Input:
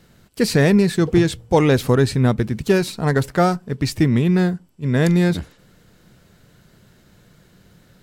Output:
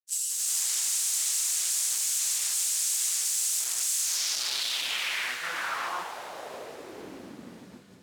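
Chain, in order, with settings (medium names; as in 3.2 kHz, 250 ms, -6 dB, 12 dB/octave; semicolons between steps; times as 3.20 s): zero-crossing glitches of -13 dBFS; granulator 139 ms, grains 15 per s, spray 780 ms; gated-style reverb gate 210 ms flat, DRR -6 dB; integer overflow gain 15 dB; band-pass sweep 7.5 kHz -> 240 Hz, 3.98–7.40 s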